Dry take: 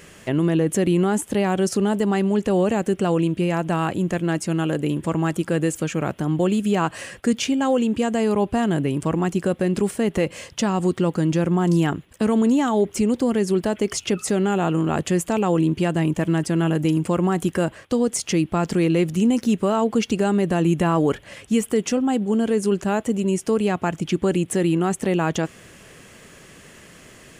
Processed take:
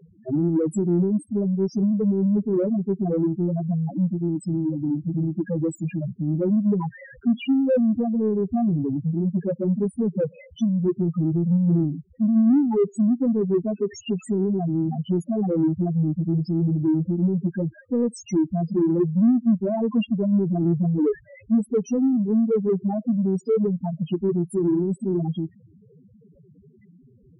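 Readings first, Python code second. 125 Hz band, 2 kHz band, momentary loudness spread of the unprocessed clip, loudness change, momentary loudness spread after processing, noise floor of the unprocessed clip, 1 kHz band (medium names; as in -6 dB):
-0.5 dB, under -15 dB, 4 LU, -1.5 dB, 6 LU, -47 dBFS, -12.5 dB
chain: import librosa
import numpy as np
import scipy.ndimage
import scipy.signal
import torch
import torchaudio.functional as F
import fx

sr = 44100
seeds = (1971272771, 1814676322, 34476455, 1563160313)

p1 = fx.high_shelf(x, sr, hz=10000.0, db=-7.0)
p2 = fx.spec_topn(p1, sr, count=2)
p3 = 10.0 ** (-23.5 / 20.0) * np.tanh(p2 / 10.0 ** (-23.5 / 20.0))
y = p2 + (p3 * 10.0 ** (-5.5 / 20.0))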